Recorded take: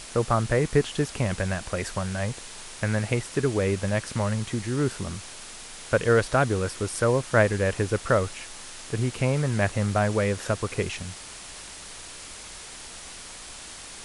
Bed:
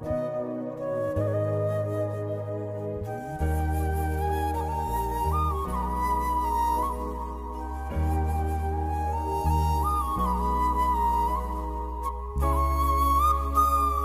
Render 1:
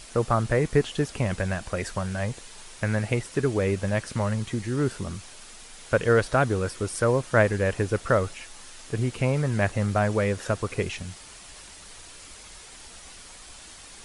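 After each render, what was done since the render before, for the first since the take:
broadband denoise 6 dB, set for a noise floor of −42 dBFS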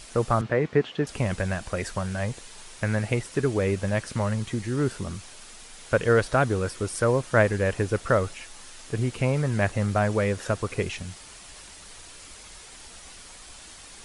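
0:00.41–0:01.07: band-pass filter 140–3,100 Hz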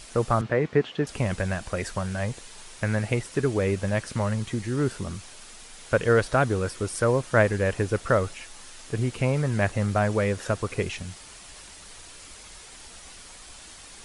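no processing that can be heard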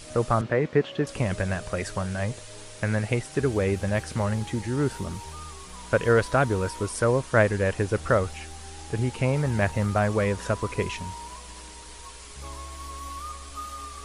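mix in bed −15.5 dB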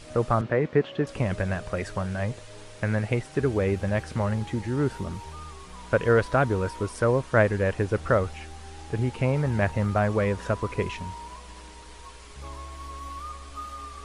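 high-shelf EQ 5,100 Hz −11 dB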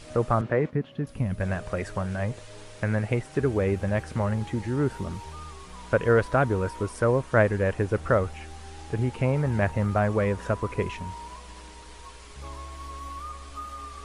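0:00.70–0:01.41: gain on a spectral selection 280–9,300 Hz −10 dB
dynamic equaliser 4,300 Hz, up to −4 dB, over −47 dBFS, Q 0.93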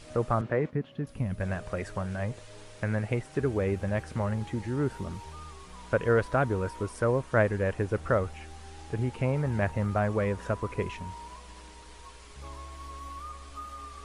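level −3.5 dB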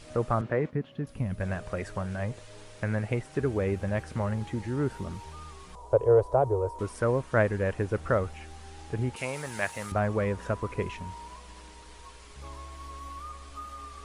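0:05.75–0:06.79: drawn EQ curve 130 Hz 0 dB, 190 Hz −24 dB, 400 Hz +5 dB, 920 Hz +4 dB, 1,600 Hz −19 dB, 2,800 Hz −17 dB, 8,000 Hz −6 dB
0:09.16–0:09.92: spectral tilt +4.5 dB per octave

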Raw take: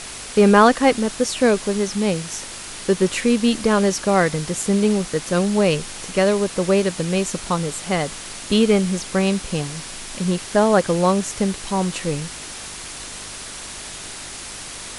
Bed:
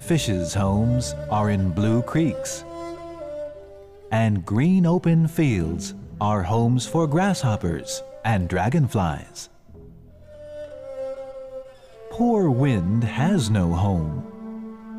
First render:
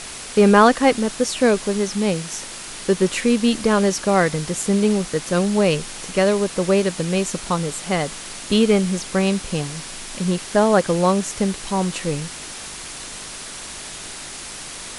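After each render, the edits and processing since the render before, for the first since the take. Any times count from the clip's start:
hum removal 50 Hz, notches 2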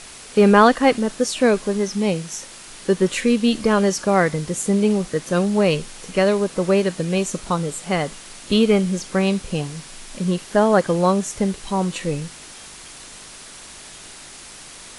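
noise reduction from a noise print 6 dB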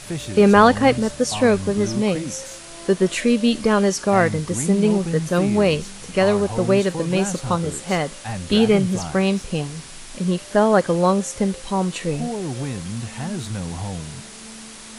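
mix in bed −8 dB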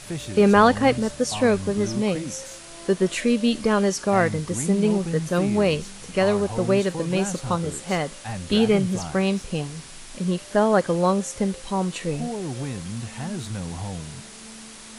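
level −3 dB

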